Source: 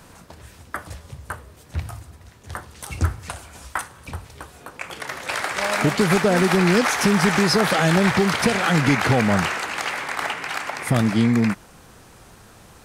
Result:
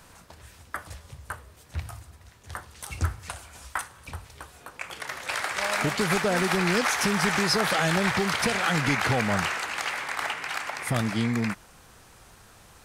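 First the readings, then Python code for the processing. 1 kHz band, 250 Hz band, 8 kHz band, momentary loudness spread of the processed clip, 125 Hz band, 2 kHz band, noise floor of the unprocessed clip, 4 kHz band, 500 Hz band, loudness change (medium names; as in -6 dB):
-4.5 dB, -9.0 dB, -3.0 dB, 18 LU, -7.5 dB, -3.5 dB, -48 dBFS, -3.0 dB, -7.0 dB, -5.5 dB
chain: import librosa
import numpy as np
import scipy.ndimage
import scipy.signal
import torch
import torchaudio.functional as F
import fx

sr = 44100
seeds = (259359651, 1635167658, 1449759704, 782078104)

y = fx.peak_eq(x, sr, hz=240.0, db=-6.0, octaves=2.8)
y = F.gain(torch.from_numpy(y), -3.0).numpy()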